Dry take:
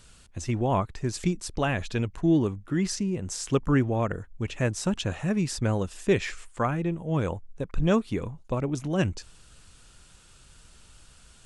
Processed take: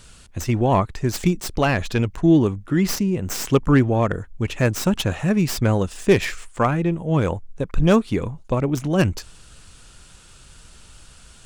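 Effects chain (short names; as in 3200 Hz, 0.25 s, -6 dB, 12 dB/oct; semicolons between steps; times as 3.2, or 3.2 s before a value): tracing distortion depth 0.1 ms; gain +7 dB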